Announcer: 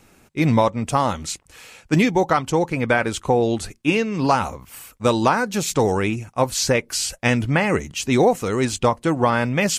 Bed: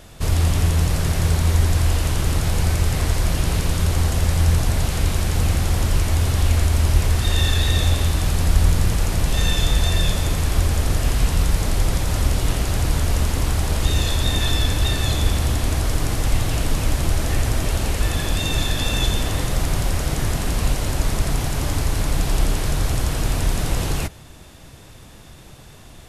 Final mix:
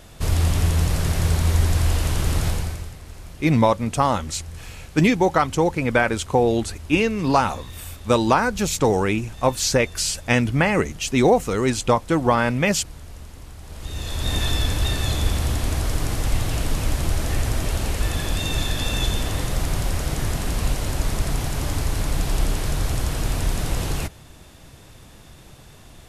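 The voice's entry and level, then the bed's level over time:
3.05 s, 0.0 dB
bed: 0:02.48 −1.5 dB
0:03.00 −20 dB
0:13.59 −20 dB
0:14.34 −2.5 dB

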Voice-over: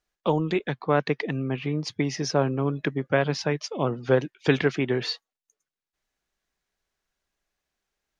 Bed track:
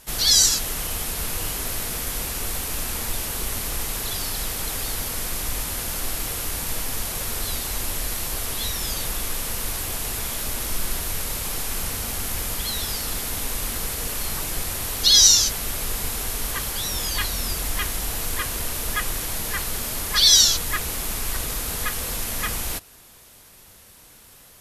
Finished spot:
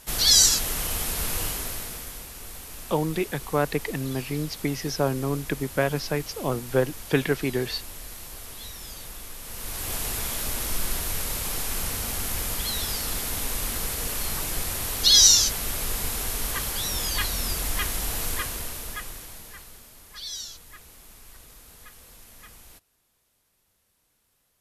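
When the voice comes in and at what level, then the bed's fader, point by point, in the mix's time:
2.65 s, −1.5 dB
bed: 0:01.41 −0.5 dB
0:02.27 −12.5 dB
0:09.39 −12.5 dB
0:09.93 −1.5 dB
0:18.29 −1.5 dB
0:19.92 −21.5 dB

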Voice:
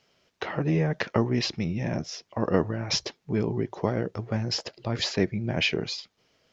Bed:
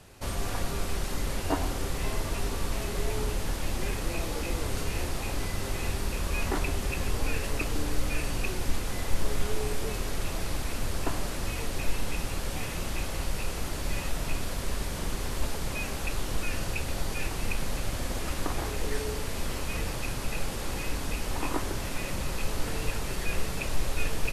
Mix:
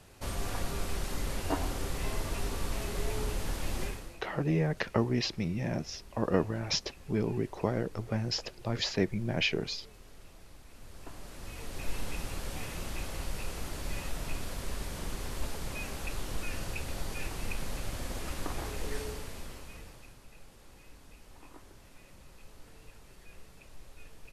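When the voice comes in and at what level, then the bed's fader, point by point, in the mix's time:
3.80 s, −4.0 dB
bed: 0:03.83 −3.5 dB
0:04.23 −22 dB
0:10.65 −22 dB
0:11.97 −5.5 dB
0:19.02 −5.5 dB
0:20.24 −22.5 dB

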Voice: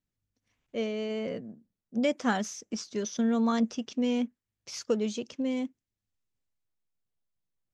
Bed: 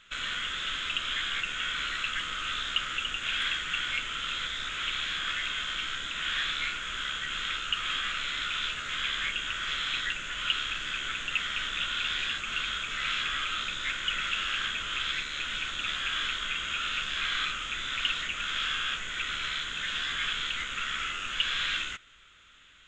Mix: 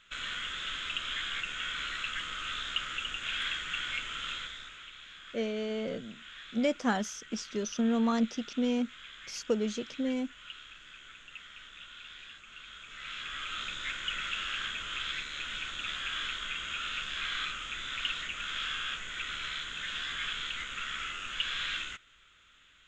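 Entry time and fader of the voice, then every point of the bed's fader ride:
4.60 s, −1.5 dB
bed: 0:04.31 −4 dB
0:04.91 −17.5 dB
0:12.59 −17.5 dB
0:13.63 −4.5 dB

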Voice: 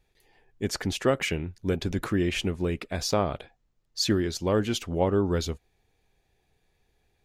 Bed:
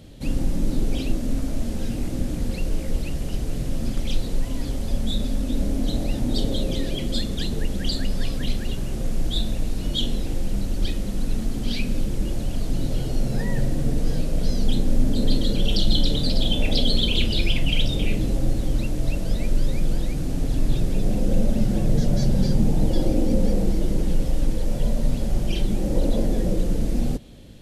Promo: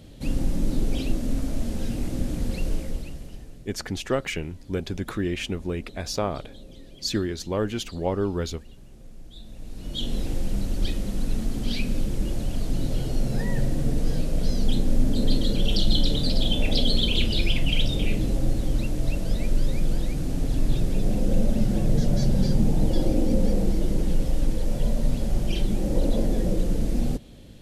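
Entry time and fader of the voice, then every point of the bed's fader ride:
3.05 s, −1.5 dB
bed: 0:02.72 −1.5 dB
0:03.70 −20.5 dB
0:09.36 −20.5 dB
0:10.18 −1.5 dB

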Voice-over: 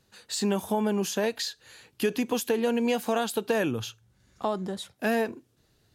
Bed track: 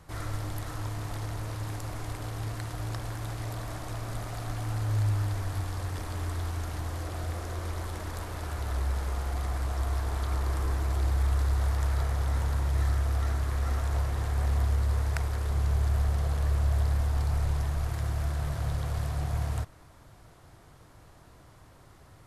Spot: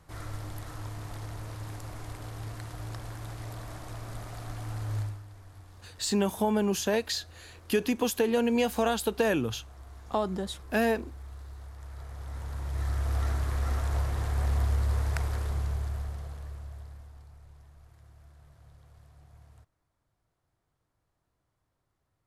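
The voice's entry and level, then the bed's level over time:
5.70 s, 0.0 dB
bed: 0:05.00 −4.5 dB
0:05.23 −18 dB
0:11.74 −18 dB
0:13.17 −0.5 dB
0:15.36 −0.5 dB
0:17.37 −25 dB

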